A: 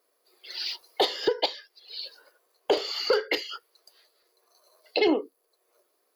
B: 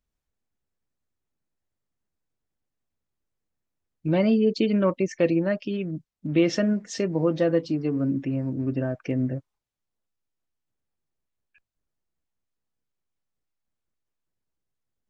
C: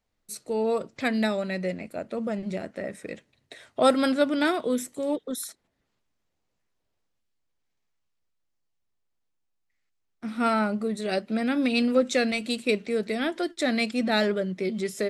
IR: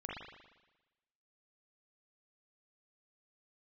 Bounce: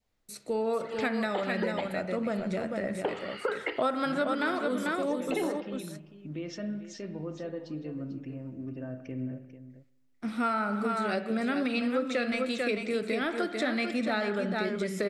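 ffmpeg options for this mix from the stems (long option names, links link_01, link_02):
-filter_complex "[0:a]lowpass=frequency=2600:width=0.5412,lowpass=frequency=2600:width=1.3066,adelay=350,volume=-5.5dB,asplit=2[link_01][link_02];[link_02]volume=-12.5dB[link_03];[1:a]alimiter=limit=-16.5dB:level=0:latency=1:release=81,volume=-14.5dB,asplit=3[link_04][link_05][link_06];[link_05]volume=-4.5dB[link_07];[link_06]volume=-10dB[link_08];[2:a]acrossover=split=4100[link_09][link_10];[link_10]acompressor=threshold=-42dB:ratio=4:attack=1:release=60[link_11];[link_09][link_11]amix=inputs=2:normalize=0,volume=-1.5dB,asplit=3[link_12][link_13][link_14];[link_13]volume=-7.5dB[link_15];[link_14]volume=-4.5dB[link_16];[3:a]atrim=start_sample=2205[link_17];[link_03][link_07][link_15]amix=inputs=3:normalize=0[link_18];[link_18][link_17]afir=irnorm=-1:irlink=0[link_19];[link_08][link_16]amix=inputs=2:normalize=0,aecho=0:1:444:1[link_20];[link_01][link_04][link_12][link_19][link_20]amix=inputs=5:normalize=0,adynamicequalizer=threshold=0.00891:dfrequency=1300:dqfactor=1.6:tfrequency=1300:tqfactor=1.6:attack=5:release=100:ratio=0.375:range=3.5:mode=boostabove:tftype=bell,acompressor=threshold=-27dB:ratio=4"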